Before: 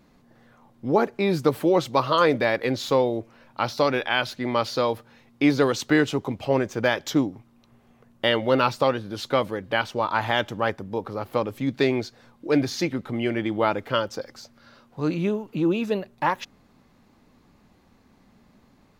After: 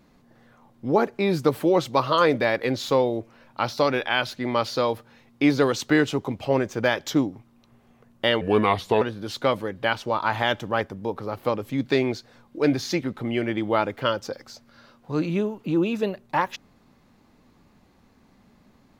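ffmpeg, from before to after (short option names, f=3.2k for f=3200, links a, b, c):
-filter_complex "[0:a]asplit=3[a][b][c];[a]atrim=end=8.414[d];[b]atrim=start=8.41:end=8.9,asetpts=PTS-STARTPTS,asetrate=35721,aresample=44100[e];[c]atrim=start=8.896[f];[d][e]acrossfade=d=0.004:c1=hsin:c2=hsin[g];[g][f]acrossfade=d=0.004:c1=hsin:c2=hsin"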